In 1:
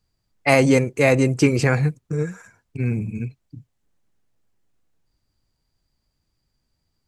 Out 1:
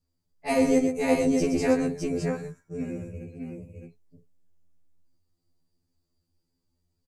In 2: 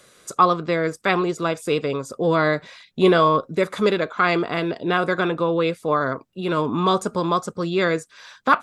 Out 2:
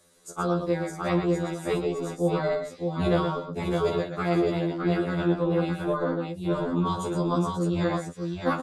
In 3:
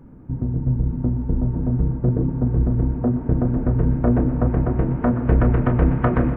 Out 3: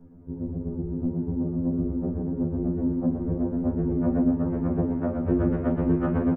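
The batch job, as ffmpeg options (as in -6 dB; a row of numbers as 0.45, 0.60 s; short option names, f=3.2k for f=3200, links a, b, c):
-filter_complex "[0:a]equalizer=f=2k:w=0.5:g=-8.5,tremolo=f=290:d=0.519,asplit=2[a][b];[b]aecho=0:1:46|120|611:0.237|0.447|0.631[c];[a][c]amix=inputs=2:normalize=0,afftfilt=real='re*2*eq(mod(b,4),0)':imag='im*2*eq(mod(b,4),0)':win_size=2048:overlap=0.75,volume=-1dB"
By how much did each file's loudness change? -6.0, -5.5, -5.5 LU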